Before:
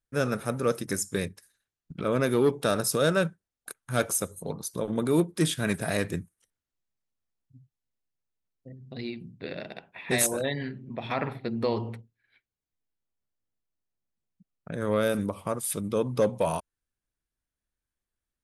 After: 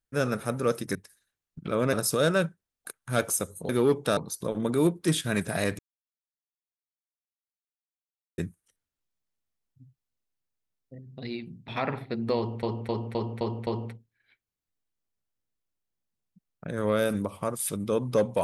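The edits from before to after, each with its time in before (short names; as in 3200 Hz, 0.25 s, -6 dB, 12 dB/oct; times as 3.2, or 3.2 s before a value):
0.95–1.28 cut
2.26–2.74 move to 4.5
6.12 insert silence 2.59 s
9.42–11.02 cut
11.71–11.97 loop, 6 plays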